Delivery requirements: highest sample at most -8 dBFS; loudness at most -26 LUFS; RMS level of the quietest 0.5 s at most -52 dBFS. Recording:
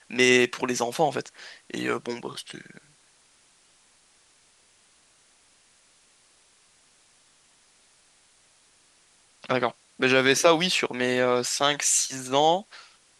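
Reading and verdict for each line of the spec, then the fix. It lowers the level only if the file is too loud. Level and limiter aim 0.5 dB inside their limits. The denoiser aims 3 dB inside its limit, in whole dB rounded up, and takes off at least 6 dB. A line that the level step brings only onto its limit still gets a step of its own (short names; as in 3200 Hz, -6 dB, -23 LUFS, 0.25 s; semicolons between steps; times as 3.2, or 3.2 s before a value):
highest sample -4.0 dBFS: fail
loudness -23.5 LUFS: fail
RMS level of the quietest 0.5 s -61 dBFS: OK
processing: gain -3 dB; limiter -8.5 dBFS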